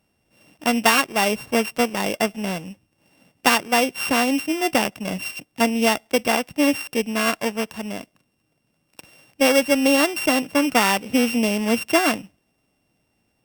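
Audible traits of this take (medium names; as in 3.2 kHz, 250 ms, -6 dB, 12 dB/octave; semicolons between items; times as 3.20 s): a buzz of ramps at a fixed pitch in blocks of 16 samples; Opus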